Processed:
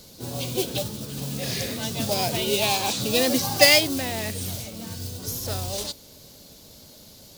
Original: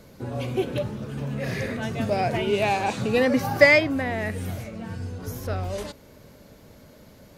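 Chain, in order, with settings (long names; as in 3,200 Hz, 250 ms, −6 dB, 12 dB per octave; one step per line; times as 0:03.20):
pitch-shifted copies added +5 semitones −11 dB
noise that follows the level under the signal 19 dB
high shelf with overshoot 2,800 Hz +12 dB, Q 1.5
level −2.5 dB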